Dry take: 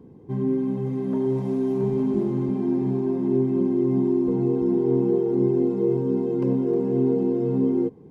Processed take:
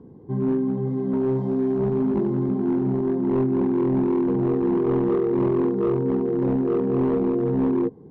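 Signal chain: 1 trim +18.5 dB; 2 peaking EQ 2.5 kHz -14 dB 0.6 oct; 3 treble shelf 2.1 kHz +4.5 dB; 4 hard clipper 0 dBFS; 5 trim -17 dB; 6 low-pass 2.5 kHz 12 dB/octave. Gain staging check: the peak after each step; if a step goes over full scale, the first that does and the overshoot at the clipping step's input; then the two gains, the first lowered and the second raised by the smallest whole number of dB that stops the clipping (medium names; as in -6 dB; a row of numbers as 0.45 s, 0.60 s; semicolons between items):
+7.5 dBFS, +7.5 dBFS, +7.5 dBFS, 0.0 dBFS, -17.0 dBFS, -16.5 dBFS; step 1, 7.5 dB; step 1 +10.5 dB, step 5 -9 dB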